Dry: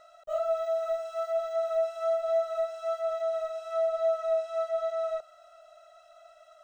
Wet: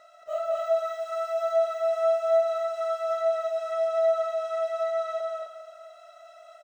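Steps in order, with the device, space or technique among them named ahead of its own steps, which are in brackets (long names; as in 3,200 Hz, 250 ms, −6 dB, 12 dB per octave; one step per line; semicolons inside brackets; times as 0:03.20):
stadium PA (high-pass filter 220 Hz 6 dB per octave; parametric band 2,100 Hz +7 dB 0.21 octaves; loudspeakers that aren't time-aligned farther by 75 metres −4 dB, 89 metres −4 dB; convolution reverb RT60 2.0 s, pre-delay 3 ms, DRR 7 dB)
level +1 dB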